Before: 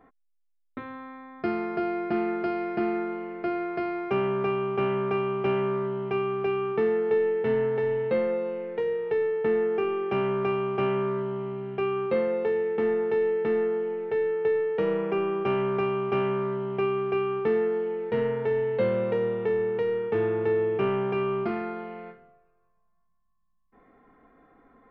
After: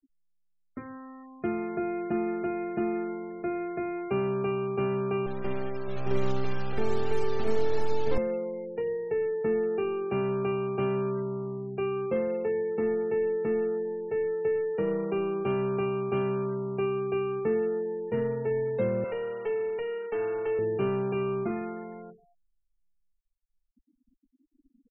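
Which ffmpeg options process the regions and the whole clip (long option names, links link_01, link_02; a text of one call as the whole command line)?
ffmpeg -i in.wav -filter_complex "[0:a]asettb=1/sr,asplit=3[link_01][link_02][link_03];[link_01]atrim=end=5.264[link_04];[link_02]atrim=start=5.26:end=8.18,asetpts=PTS-STARTPTS,afade=type=in:duration=0.004:curve=qsin,afade=type=out:start_time=2.916:duration=0.004:curve=qsin,lowpass=frequency=2800:poles=1,acrusher=bits=3:dc=4:mix=0:aa=0.000001,aecho=1:1:104|619|665|704|788:0.112|0.668|0.119|0.562|0.447,atrim=end_sample=128772[link_05];[link_03]atrim=start=8.176[link_06];[link_04][link_05]acrossfade=duration=0.004:curve1=hsin:curve2=qsin[link_07];[link_07][link_06]acrossfade=duration=0.004:curve1=qsin:curve2=hsin,asettb=1/sr,asplit=3[link_08][link_09][link_10];[link_08]atrim=end=19.044[link_11];[link_09]atrim=start=19.04:end=20.59,asetpts=PTS-STARTPTS,afade=type=in:duration=0.004:curve=qsin,afade=type=out:start_time=1.546:duration=0.004:curve=qsin,highpass=frequency=570:poles=1,asplit=2[link_12][link_13];[link_13]highpass=frequency=720:poles=1,volume=11dB,asoftclip=type=tanh:threshold=-20dB[link_14];[link_12][link_14]amix=inputs=2:normalize=0,lowpass=frequency=3300:poles=1,volume=-6dB,aecho=1:1:7.1:0.43,atrim=end_sample=68355[link_15];[link_10]atrim=start=20.586[link_16];[link_11][link_15]acrossfade=duration=0.004:curve1=hsin:curve2=qsin[link_17];[link_17][link_16]acrossfade=duration=0.004:curve1=qsin:curve2=hsin,lowshelf=frequency=450:gain=9,afftfilt=real='re*gte(hypot(re,im),0.0178)':imag='im*gte(hypot(re,im),0.0178)':win_size=1024:overlap=0.75,highshelf=frequency=3500:gain=9,volume=-7.5dB" out.wav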